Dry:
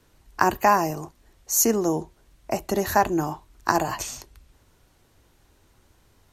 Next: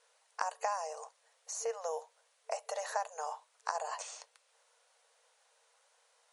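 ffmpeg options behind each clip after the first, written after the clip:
-filter_complex "[0:a]afftfilt=real='re*between(b*sr/4096,450,11000)':imag='im*between(b*sr/4096,450,11000)':win_size=4096:overlap=0.75,acrossover=split=1300|4600[a][b][c];[a]acompressor=threshold=-28dB:ratio=4[d];[b]acompressor=threshold=-45dB:ratio=4[e];[c]acompressor=threshold=-45dB:ratio=4[f];[d][e][f]amix=inputs=3:normalize=0,highshelf=f=8.4k:g=6,volume=-5.5dB"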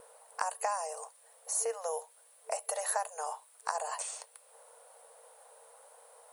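-filter_complex "[0:a]acrossover=split=1000|4800[a][b][c];[a]acompressor=mode=upward:threshold=-46dB:ratio=2.5[d];[d][b][c]amix=inputs=3:normalize=0,aexciter=amount=5.6:drive=9:freq=8.8k,volume=1.5dB"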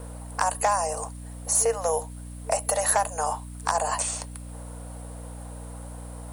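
-filter_complex "[0:a]aeval=exprs='val(0)+0.00398*(sin(2*PI*60*n/s)+sin(2*PI*2*60*n/s)/2+sin(2*PI*3*60*n/s)/3+sin(2*PI*4*60*n/s)/4+sin(2*PI*5*60*n/s)/5)':c=same,asplit=2[a][b];[b]aeval=exprs='0.0531*(abs(mod(val(0)/0.0531+3,4)-2)-1)':c=same,volume=-3.5dB[c];[a][c]amix=inputs=2:normalize=0,volume=6dB"

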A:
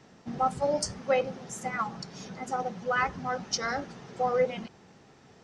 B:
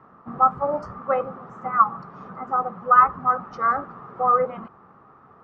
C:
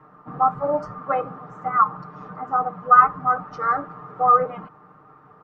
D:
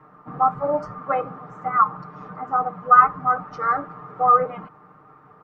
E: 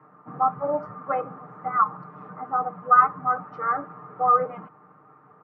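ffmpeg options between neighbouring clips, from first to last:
-af "lowpass=f=1.2k:t=q:w=11"
-af "aecho=1:1:6.6:0.8,volume=-1dB"
-af "equalizer=f=2.2k:t=o:w=0.31:g=3"
-af "highpass=110,lowpass=2.2k,volume=-3dB"

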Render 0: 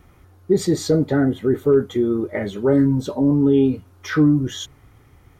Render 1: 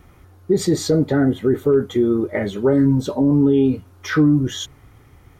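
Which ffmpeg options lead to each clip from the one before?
-af "alimiter=limit=-10.5dB:level=0:latency=1:release=62,volume=2.5dB"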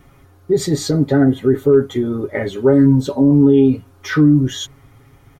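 -af "aecho=1:1:7.3:0.65"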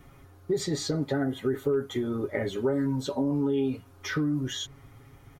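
-filter_complex "[0:a]acrossover=split=580|7600[a][b][c];[a]acompressor=threshold=-24dB:ratio=4[d];[b]acompressor=threshold=-28dB:ratio=4[e];[c]acompressor=threshold=-48dB:ratio=4[f];[d][e][f]amix=inputs=3:normalize=0,volume=-4.5dB"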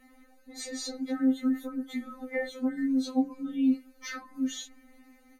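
-af "afftfilt=real='re*3.46*eq(mod(b,12),0)':imag='im*3.46*eq(mod(b,12),0)':win_size=2048:overlap=0.75"

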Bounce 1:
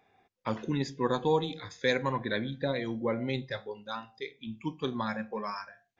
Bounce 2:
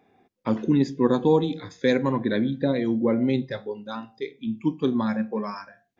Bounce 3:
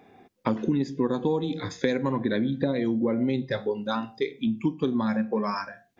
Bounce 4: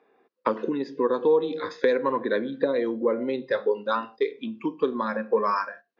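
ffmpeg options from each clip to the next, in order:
-af "equalizer=f=260:t=o:w=1.9:g=12.5"
-af "acompressor=threshold=-30dB:ratio=6,volume=7.5dB"
-af "highpass=460,equalizer=f=470:t=q:w=4:g=6,equalizer=f=750:t=q:w=4:g=-9,equalizer=f=1.1k:t=q:w=4:g=4,equalizer=f=2.2k:t=q:w=4:g=-7,equalizer=f=3.4k:t=q:w=4:g=-8,lowpass=f=4.2k:w=0.5412,lowpass=f=4.2k:w=1.3066,agate=range=-10dB:threshold=-48dB:ratio=16:detection=peak,volume=5dB"

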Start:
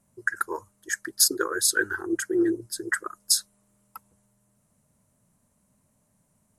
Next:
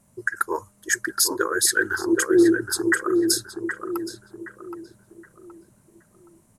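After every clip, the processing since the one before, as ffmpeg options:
-filter_complex "[0:a]alimiter=limit=-15.5dB:level=0:latency=1:release=398,asplit=2[a][b];[b]adelay=771,lowpass=f=1.6k:p=1,volume=-5dB,asplit=2[c][d];[d]adelay=771,lowpass=f=1.6k:p=1,volume=0.39,asplit=2[e][f];[f]adelay=771,lowpass=f=1.6k:p=1,volume=0.39,asplit=2[g][h];[h]adelay=771,lowpass=f=1.6k:p=1,volume=0.39,asplit=2[i][j];[j]adelay=771,lowpass=f=1.6k:p=1,volume=0.39[k];[c][e][g][i][k]amix=inputs=5:normalize=0[l];[a][l]amix=inputs=2:normalize=0,volume=7.5dB"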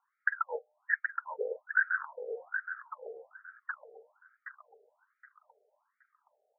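-af "equalizer=f=2.6k:w=4.7:g=-9,afftfilt=real='re*between(b*sr/1024,560*pow(1800/560,0.5+0.5*sin(2*PI*1.2*pts/sr))/1.41,560*pow(1800/560,0.5+0.5*sin(2*PI*1.2*pts/sr))*1.41)':imag='im*between(b*sr/1024,560*pow(1800/560,0.5+0.5*sin(2*PI*1.2*pts/sr))/1.41,560*pow(1800/560,0.5+0.5*sin(2*PI*1.2*pts/sr))*1.41)':win_size=1024:overlap=0.75,volume=-4dB"

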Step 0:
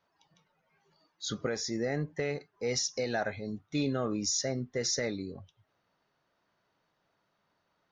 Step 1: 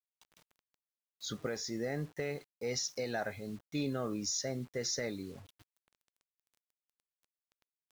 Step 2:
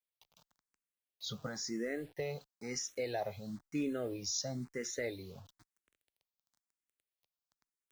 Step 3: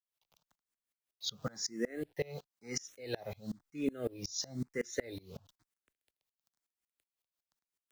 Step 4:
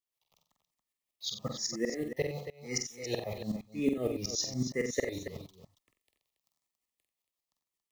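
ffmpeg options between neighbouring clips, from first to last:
-af "areverse,acompressor=mode=upward:threshold=-52dB:ratio=2.5,areverse,acrusher=bits=8:mix=0:aa=0.000001,volume=-4.5dB"
-filter_complex "[0:a]asplit=2[a][b];[b]afreqshift=1[c];[a][c]amix=inputs=2:normalize=1,volume=1dB"
-filter_complex "[0:a]acrossover=split=510|1100[a][b][c];[b]alimiter=level_in=17.5dB:limit=-24dB:level=0:latency=1,volume=-17.5dB[d];[a][d][c]amix=inputs=3:normalize=0,aeval=exprs='val(0)*pow(10,-27*if(lt(mod(-5.4*n/s,1),2*abs(-5.4)/1000),1-mod(-5.4*n/s,1)/(2*abs(-5.4)/1000),(mod(-5.4*n/s,1)-2*abs(-5.4)/1000)/(1-2*abs(-5.4)/1000))/20)':c=same,volume=8dB"
-af "dynaudnorm=f=320:g=11:m=4dB,asuperstop=centerf=1500:order=8:qfactor=3.9,aecho=1:1:47|90|279:0.531|0.266|0.299"

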